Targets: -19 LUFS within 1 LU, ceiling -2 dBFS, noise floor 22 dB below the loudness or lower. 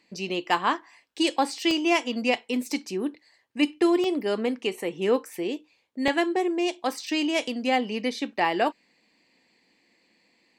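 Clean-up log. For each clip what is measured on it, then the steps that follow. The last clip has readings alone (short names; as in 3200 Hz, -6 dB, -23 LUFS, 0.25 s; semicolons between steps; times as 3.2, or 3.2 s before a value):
dropouts 3; longest dropout 1.5 ms; loudness -26.0 LUFS; peak -7.5 dBFS; loudness target -19.0 LUFS
-> interpolate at 1.71/4.04/6.08, 1.5 ms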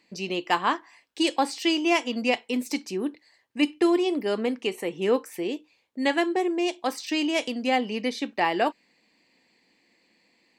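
dropouts 0; loudness -26.0 LUFS; peak -7.5 dBFS; loudness target -19.0 LUFS
-> gain +7 dB; limiter -2 dBFS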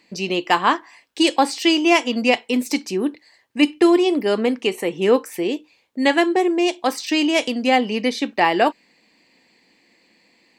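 loudness -19.0 LUFS; peak -2.0 dBFS; noise floor -60 dBFS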